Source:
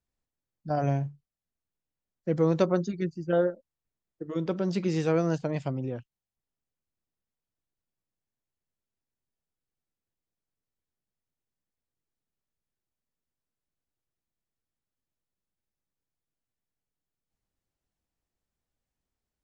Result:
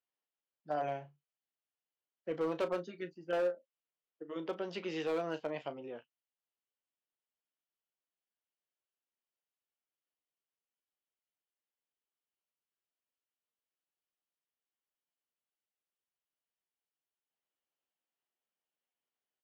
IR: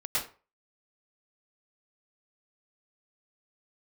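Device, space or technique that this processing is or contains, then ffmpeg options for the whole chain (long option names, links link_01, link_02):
megaphone: -filter_complex "[0:a]asettb=1/sr,asplit=3[link_01][link_02][link_03];[link_01]atrim=end=4.634[link_04];[link_02]atrim=start=4.63:end=5.03,asetpts=PTS-STARTPTS,afade=type=in:duration=0.004:curve=qsin,afade=type=out:start_time=0.396:duration=0.004:curve=qsin,highshelf=frequency=4100:gain=5.5[link_05];[link_03]atrim=start=5.026[link_06];[link_04][link_05]acrossfade=duration=0.004:curve1=hsin:curve2=qsin[link_07];[link_07][link_06]acrossfade=duration=0.004:curve1=qsin:curve2=hsin,highpass=450,lowpass=3100,equalizer=frequency=3000:width_type=o:width=0.3:gain=9,asplit=2[link_08][link_09];[link_09]adelay=13,volume=-10dB[link_10];[link_08][link_10]amix=inputs=2:normalize=0,asoftclip=type=hard:threshold=-23.5dB,asplit=2[link_11][link_12];[link_12]adelay=34,volume=-13dB[link_13];[link_11][link_13]amix=inputs=2:normalize=0,volume=-4.5dB"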